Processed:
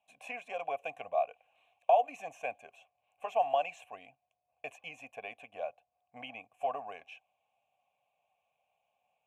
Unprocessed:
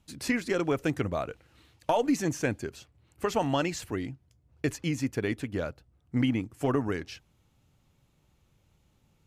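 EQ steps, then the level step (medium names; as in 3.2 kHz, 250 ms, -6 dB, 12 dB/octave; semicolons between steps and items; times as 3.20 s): vowel filter a; tone controls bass -12 dB, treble +6 dB; static phaser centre 1.3 kHz, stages 6; +8.5 dB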